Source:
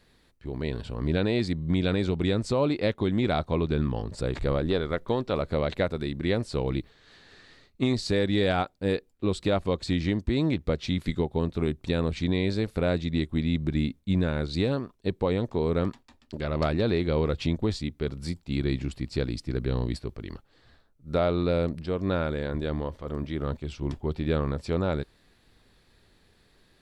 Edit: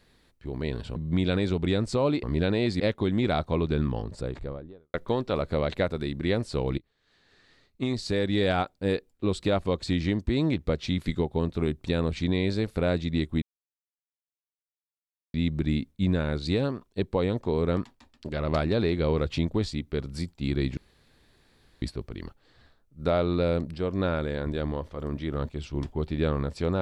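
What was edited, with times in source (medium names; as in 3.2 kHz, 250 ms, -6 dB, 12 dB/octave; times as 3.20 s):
0.96–1.53 s: move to 2.80 s
3.83–4.94 s: studio fade out
6.78–8.51 s: fade in, from -22.5 dB
13.42 s: insert silence 1.92 s
18.85–19.90 s: room tone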